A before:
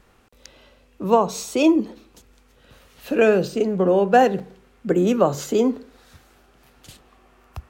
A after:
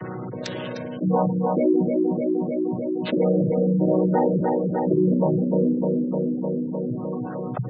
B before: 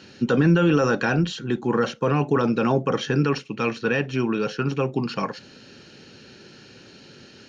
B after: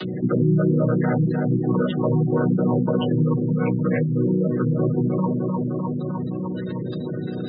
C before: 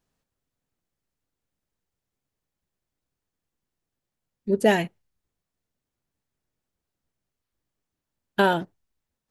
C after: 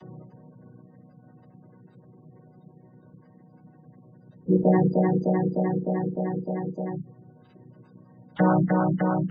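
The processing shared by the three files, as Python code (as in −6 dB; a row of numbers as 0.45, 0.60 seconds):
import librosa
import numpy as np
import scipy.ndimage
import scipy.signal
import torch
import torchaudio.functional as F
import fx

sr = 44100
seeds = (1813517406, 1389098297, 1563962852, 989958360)

p1 = fx.chord_vocoder(x, sr, chord='major triad', root=47)
p2 = p1 + fx.echo_feedback(p1, sr, ms=304, feedback_pct=55, wet_db=-8.5, dry=0)
p3 = fx.spec_gate(p2, sr, threshold_db=-20, keep='strong')
p4 = fx.peak_eq(p3, sr, hz=3500.0, db=5.5, octaves=0.67)
p5 = fx.env_flatten(p4, sr, amount_pct=70)
y = librosa.util.normalize(p5) * 10.0 ** (-9 / 20.0)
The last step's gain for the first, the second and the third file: −6.0, −4.0, −1.0 decibels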